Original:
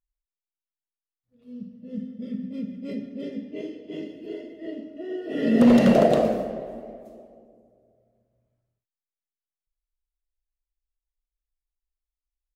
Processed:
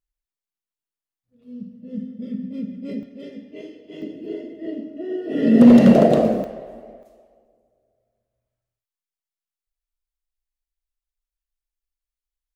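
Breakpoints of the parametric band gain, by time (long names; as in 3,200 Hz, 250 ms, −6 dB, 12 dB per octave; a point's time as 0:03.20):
parametric band 210 Hz 2.6 octaves
+3 dB
from 0:03.03 −4.5 dB
from 0:04.02 +6.5 dB
from 0:06.44 −3.5 dB
from 0:07.03 −13 dB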